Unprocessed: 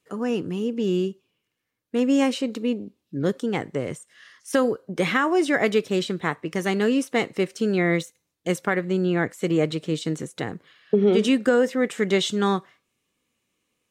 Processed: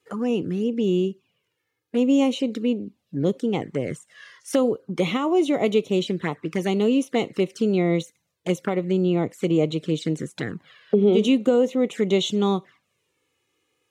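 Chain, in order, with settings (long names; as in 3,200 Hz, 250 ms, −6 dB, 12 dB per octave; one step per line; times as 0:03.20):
high-pass filter 90 Hz
high-shelf EQ 4,800 Hz −4.5 dB
in parallel at +2.5 dB: downward compressor 4 to 1, threshold −36 dBFS, peak gain reduction 18 dB
on the sum: flanger swept by the level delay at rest 2.4 ms, full sweep at −18.5 dBFS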